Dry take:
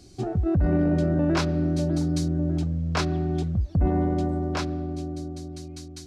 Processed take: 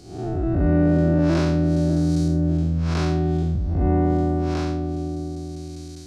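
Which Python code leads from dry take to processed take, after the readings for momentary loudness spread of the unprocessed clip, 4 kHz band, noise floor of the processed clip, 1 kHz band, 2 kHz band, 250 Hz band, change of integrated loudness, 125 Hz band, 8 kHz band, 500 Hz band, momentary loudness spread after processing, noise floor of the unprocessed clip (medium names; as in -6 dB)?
12 LU, -1.5 dB, -36 dBFS, +3.0 dB, +1.0 dB, +4.0 dB, +4.0 dB, +4.0 dB, -1.5 dB, +4.0 dB, 11 LU, -42 dBFS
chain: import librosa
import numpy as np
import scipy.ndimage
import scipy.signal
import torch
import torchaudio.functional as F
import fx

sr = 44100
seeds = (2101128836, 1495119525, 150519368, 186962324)

y = fx.spec_blur(x, sr, span_ms=192.0)
y = y * librosa.db_to_amplitude(5.0)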